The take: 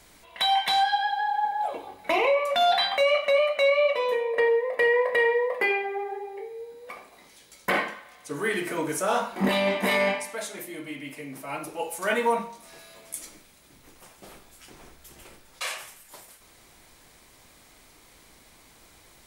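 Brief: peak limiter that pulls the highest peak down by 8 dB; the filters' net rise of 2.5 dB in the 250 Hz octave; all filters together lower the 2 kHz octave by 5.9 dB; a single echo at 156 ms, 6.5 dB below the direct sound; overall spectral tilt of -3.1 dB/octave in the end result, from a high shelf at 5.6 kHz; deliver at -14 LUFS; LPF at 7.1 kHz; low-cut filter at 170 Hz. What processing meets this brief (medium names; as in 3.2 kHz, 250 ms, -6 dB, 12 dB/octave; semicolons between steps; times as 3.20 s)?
high-pass 170 Hz; low-pass 7.1 kHz; peaking EQ 250 Hz +5 dB; peaking EQ 2 kHz -8 dB; treble shelf 5.6 kHz +8.5 dB; peak limiter -19.5 dBFS; delay 156 ms -6.5 dB; trim +14 dB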